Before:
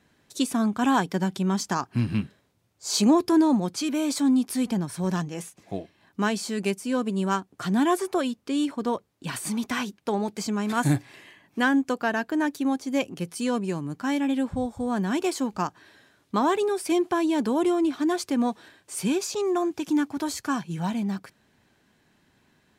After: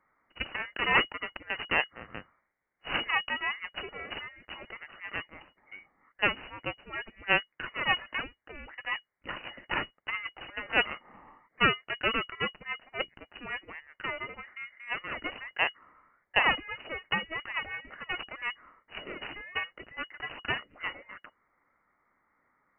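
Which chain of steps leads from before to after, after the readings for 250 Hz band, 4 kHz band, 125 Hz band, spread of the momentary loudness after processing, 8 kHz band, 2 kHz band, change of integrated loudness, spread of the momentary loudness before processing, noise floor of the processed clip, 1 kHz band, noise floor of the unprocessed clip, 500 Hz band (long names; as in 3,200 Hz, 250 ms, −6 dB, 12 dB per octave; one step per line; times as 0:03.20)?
−22.5 dB, +1.0 dB, −16.0 dB, 17 LU, below −40 dB, +4.0 dB, −6.0 dB, 8 LU, −78 dBFS, −6.0 dB, −66 dBFS, −12.0 dB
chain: Butterworth high-pass 750 Hz 36 dB per octave
harmonic generator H 3 −21 dB, 4 −6 dB, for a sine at −12.5 dBFS
voice inversion scrambler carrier 2,900 Hz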